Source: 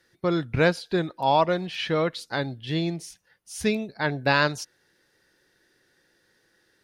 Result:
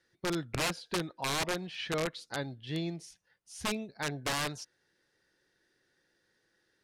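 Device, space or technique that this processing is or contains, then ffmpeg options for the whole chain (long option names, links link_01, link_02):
overflowing digital effects unit: -af "aeval=exprs='(mod(6.68*val(0)+1,2)-1)/6.68':channel_layout=same,lowpass=9900,volume=-8.5dB"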